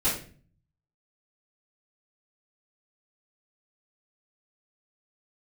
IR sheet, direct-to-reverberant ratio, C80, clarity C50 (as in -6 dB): -12.5 dB, 10.5 dB, 5.0 dB